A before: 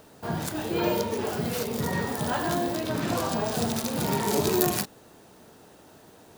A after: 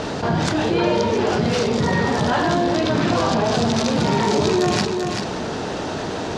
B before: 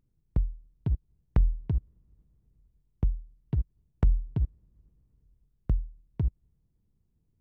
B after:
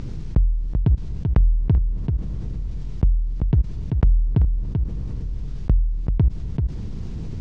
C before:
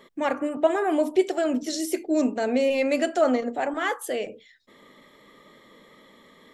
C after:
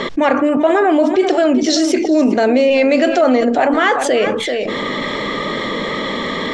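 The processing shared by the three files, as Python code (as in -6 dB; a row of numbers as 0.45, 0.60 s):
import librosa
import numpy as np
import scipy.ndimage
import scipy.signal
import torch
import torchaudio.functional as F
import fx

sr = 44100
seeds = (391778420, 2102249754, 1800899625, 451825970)

y = scipy.signal.sosfilt(scipy.signal.butter(4, 6000.0, 'lowpass', fs=sr, output='sos'), x)
y = y + 10.0 ** (-16.5 / 20.0) * np.pad(y, (int(387 * sr / 1000.0), 0))[:len(y)]
y = fx.env_flatten(y, sr, amount_pct=70)
y = F.gain(torch.from_numpy(y), 5.0).numpy()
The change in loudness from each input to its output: +7.5, +8.5, +10.0 LU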